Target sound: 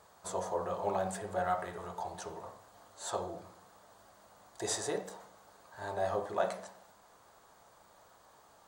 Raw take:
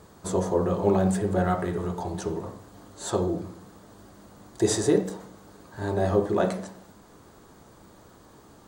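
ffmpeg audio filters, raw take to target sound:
ffmpeg -i in.wav -af "lowshelf=frequency=460:width_type=q:width=1.5:gain=-11.5,volume=-6.5dB" out.wav

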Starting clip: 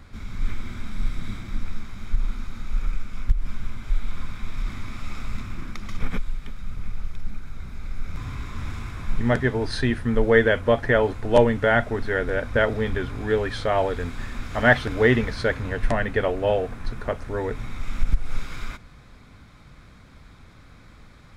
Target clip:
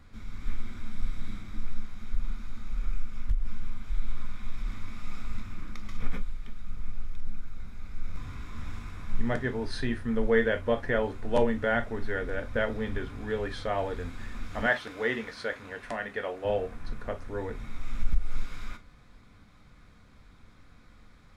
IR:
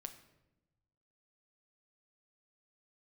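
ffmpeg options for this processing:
-filter_complex "[0:a]asettb=1/sr,asplit=3[link_01][link_02][link_03];[link_01]atrim=end=14.664[link_04];[link_02]atrim=start=14.66:end=16.45,asetpts=PTS-STARTPTS,afade=type=in:duration=0.004:curve=qsin,afade=type=out:start_time=1.786:duration=0.004:curve=qsin,highpass=frequency=510:poles=1[link_05];[link_03]atrim=start=16.446[link_06];[link_04][link_05]acrossfade=duration=0.004:curve1=hsin:curve2=qsin[link_07];[link_07][link_06]acrossfade=duration=0.004:curve1=qsin:curve2=hsin[link_08];[1:a]atrim=start_sample=2205,afade=type=out:start_time=0.14:duration=0.01,atrim=end_sample=6615,asetrate=70560,aresample=44100[link_09];[link_08][link_09]afir=irnorm=-1:irlink=0,volume=1dB"

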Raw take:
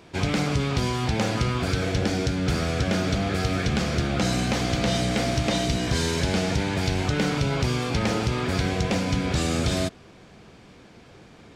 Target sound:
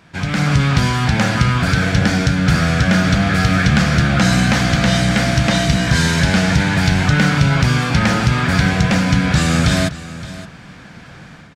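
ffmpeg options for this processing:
ffmpeg -i in.wav -af "equalizer=frequency=160:width_type=o:width=0.67:gain=7,equalizer=frequency=400:width_type=o:width=0.67:gain=-9,equalizer=frequency=1600:width_type=o:width=0.67:gain=8,dynaudnorm=framelen=270:gausssize=3:maxgain=9.5dB,aecho=1:1:569:0.158" out.wav

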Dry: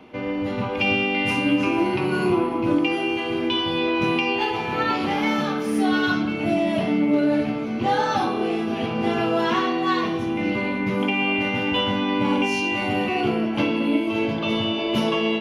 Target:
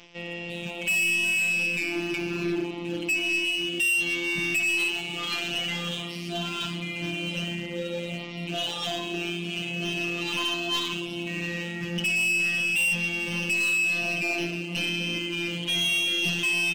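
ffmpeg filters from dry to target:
ffmpeg -i in.wav -af "asetrate=40572,aresample=44100,highshelf=frequency=2100:width_type=q:width=3:gain=10,afftfilt=real='hypot(re,im)*cos(PI*b)':imag='0':win_size=1024:overlap=0.75,aresample=16000,aeval=exprs='sgn(val(0))*max(abs(val(0))-0.00266,0)':channel_layout=same,aresample=44100,equalizer=frequency=76:width=7.4:gain=12,volume=17.5dB,asoftclip=hard,volume=-17.5dB,areverse,acompressor=mode=upward:threshold=-27dB:ratio=2.5,areverse,flanger=delay=8.8:depth=5.8:regen=-90:speed=0.72:shape=sinusoidal,aecho=1:1:436:0.0944" out.wav

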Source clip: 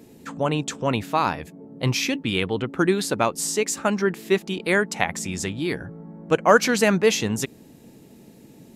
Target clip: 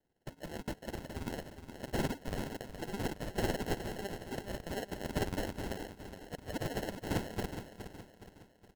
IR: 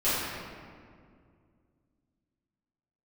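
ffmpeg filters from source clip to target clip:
-filter_complex "[0:a]agate=range=-24dB:threshold=-38dB:ratio=16:detection=peak,areverse,acompressor=threshold=-29dB:ratio=12,areverse,bandpass=frequency=5100:width_type=q:width=1.2:csg=0,acrusher=samples=37:mix=1:aa=0.000001,asoftclip=type=tanh:threshold=-37.5dB,tremolo=f=18:d=0.65,asplit=2[link_01][link_02];[link_02]aecho=0:1:417|834|1251|1668|2085:0.335|0.147|0.0648|0.0285|0.0126[link_03];[link_01][link_03]amix=inputs=2:normalize=0,volume=12dB"

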